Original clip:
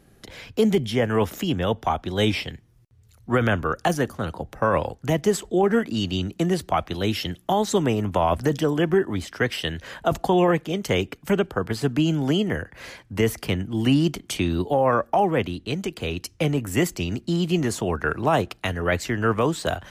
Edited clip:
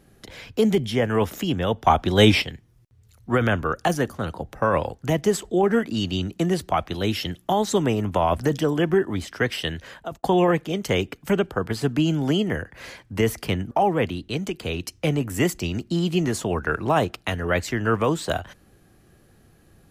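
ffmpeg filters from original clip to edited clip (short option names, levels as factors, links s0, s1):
-filter_complex "[0:a]asplit=5[s0][s1][s2][s3][s4];[s0]atrim=end=1.872[s5];[s1]atrim=start=1.868:end=2.422,asetpts=PTS-STARTPTS,volume=2.11[s6];[s2]atrim=start=2.418:end=10.23,asetpts=PTS-STARTPTS,afade=t=out:st=7.312:d=0.5[s7];[s3]atrim=start=10.23:end=13.712,asetpts=PTS-STARTPTS,afade=t=in:d=0.004:c=hsin[s8];[s4]atrim=start=15.078[s9];[s5][s6]acrossfade=d=0.004:c1=hsin:c2=hsin[s10];[s7][s8]concat=n=2:v=0:a=1[s11];[s10][s11]acrossfade=d=0.004:c1=hsin:c2=hsin[s12];[s12][s9]acrossfade=d=0.004:c1=hsin:c2=hsin"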